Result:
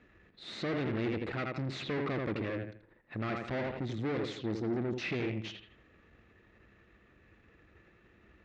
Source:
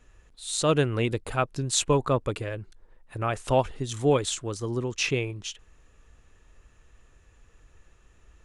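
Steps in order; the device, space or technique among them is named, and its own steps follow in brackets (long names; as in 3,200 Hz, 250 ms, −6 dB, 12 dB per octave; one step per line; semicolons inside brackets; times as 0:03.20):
0:03.80–0:05.04: flat-topped bell 1,300 Hz −8 dB 2.6 octaves
analogue delay pedal into a guitar amplifier (bucket-brigade delay 82 ms, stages 2,048, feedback 31%, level −9 dB; tube saturation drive 36 dB, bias 0.6; loudspeaker in its box 92–3,900 Hz, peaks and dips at 210 Hz +7 dB, 330 Hz +7 dB, 960 Hz −5 dB, 2,000 Hz +6 dB, 3,100 Hz −5 dB)
level +2.5 dB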